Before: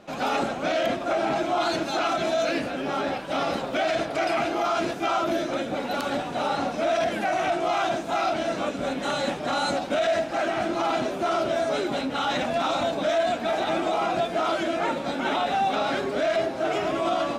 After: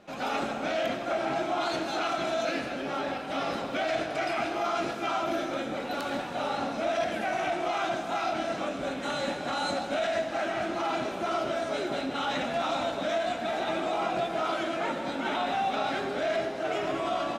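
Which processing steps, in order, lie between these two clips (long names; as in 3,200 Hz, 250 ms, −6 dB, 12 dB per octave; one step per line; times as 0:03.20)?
parametric band 2,100 Hz +2 dB 1.4 octaves
double-tracking delay 22 ms −12 dB
on a send: convolution reverb RT60 1.9 s, pre-delay 66 ms, DRR 7 dB
on the sum: level −6 dB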